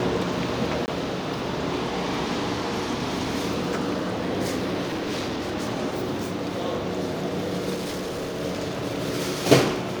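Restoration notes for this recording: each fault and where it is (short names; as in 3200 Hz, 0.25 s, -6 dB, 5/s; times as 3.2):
0.86–0.88 gap 19 ms
4.81–5.56 clipped -24.5 dBFS
7.74–8.4 clipped -26.5 dBFS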